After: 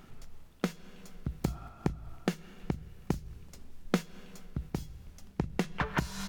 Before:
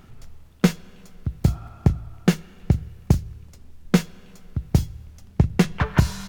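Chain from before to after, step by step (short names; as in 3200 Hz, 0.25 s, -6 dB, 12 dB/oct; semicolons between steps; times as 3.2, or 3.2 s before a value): bell 92 Hz -15 dB 0.6 oct; compressor 10:1, threshold -24 dBFS, peak gain reduction 13 dB; noise-modulated level, depth 50%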